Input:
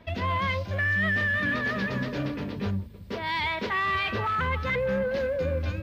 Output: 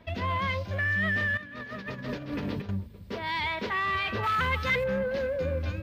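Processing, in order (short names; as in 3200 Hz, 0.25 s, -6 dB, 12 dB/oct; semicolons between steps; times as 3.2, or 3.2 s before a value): 1.37–2.69 negative-ratio compressor -33 dBFS, ratio -0.5; 4.23–4.84 high shelf 2400 Hz +11 dB; gain -2 dB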